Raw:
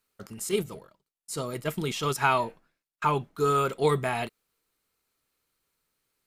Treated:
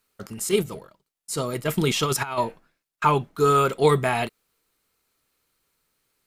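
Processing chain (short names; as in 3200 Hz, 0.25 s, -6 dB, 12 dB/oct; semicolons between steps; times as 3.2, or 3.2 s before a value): 1.67–2.38 negative-ratio compressor -28 dBFS, ratio -0.5; gain +5.5 dB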